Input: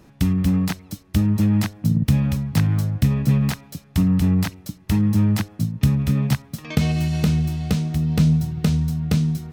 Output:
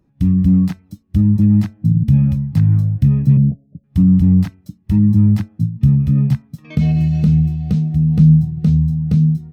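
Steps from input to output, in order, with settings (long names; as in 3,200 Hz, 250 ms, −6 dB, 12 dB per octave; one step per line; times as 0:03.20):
hum removal 220.3 Hz, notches 14
0:03.37–0:03.84: Butterworth low-pass 650 Hz 48 dB per octave
in parallel at +2 dB: brickwall limiter −14 dBFS, peak gain reduction 8 dB
on the sum: every bin expanded away from the loudest bin 1.5 to 1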